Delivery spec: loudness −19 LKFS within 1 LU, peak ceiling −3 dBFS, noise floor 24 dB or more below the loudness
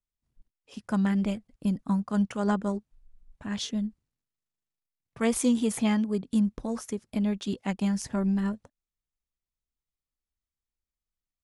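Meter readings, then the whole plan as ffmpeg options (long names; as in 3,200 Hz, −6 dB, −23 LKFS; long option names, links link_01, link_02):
integrated loudness −28.5 LKFS; sample peak −11.5 dBFS; target loudness −19.0 LKFS
→ -af "volume=9.5dB,alimiter=limit=-3dB:level=0:latency=1"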